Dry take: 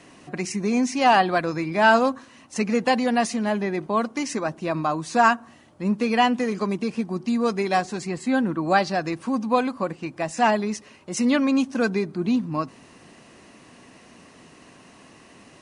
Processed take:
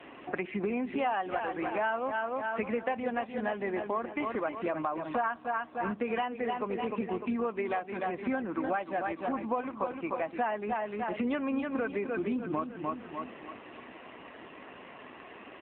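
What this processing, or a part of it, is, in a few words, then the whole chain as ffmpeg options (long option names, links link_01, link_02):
voicemail: -filter_complex "[0:a]lowpass=6200,asettb=1/sr,asplit=3[link_01][link_02][link_03];[link_01]atrim=end=4.144[link_04];[link_02]atrim=start=4.14:end=4.55,asetpts=PTS-STARTPTS,afade=type=in:duration=0.004:curve=qsin,afade=type=out:start_time=0.406:duration=0.004:curve=qsin,highshelf=frequency=2600:gain=2[link_05];[link_03]atrim=start=4.546[link_06];[link_04][link_05]acrossfade=duration=0.004:curve1=hsin:curve2=qsin[link_07];[link_07][link_06]acrossfade=duration=0.004:curve1=qsin:curve2=hsin,highpass=340,lowpass=3000,aecho=1:1:300|600|900|1200|1500:0.398|0.159|0.0637|0.0255|0.0102,acompressor=threshold=-35dB:ratio=6,volume=6dB" -ar 8000 -c:a libopencore_amrnb -b:a 7400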